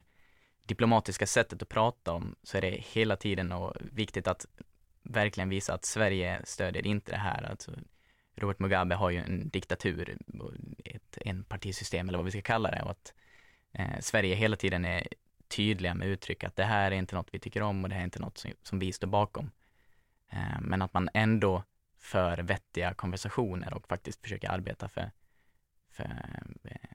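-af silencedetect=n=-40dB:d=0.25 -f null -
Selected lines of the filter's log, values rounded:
silence_start: 0.00
silence_end: 0.69 | silence_duration: 0.69
silence_start: 4.61
silence_end: 5.06 | silence_duration: 0.45
silence_start: 7.83
silence_end: 8.38 | silence_duration: 0.55
silence_start: 13.08
silence_end: 13.75 | silence_duration: 0.67
silence_start: 15.13
silence_end: 15.51 | silence_duration: 0.38
silence_start: 19.48
silence_end: 20.32 | silence_duration: 0.84
silence_start: 21.62
silence_end: 22.06 | silence_duration: 0.45
silence_start: 25.09
silence_end: 25.99 | silence_duration: 0.90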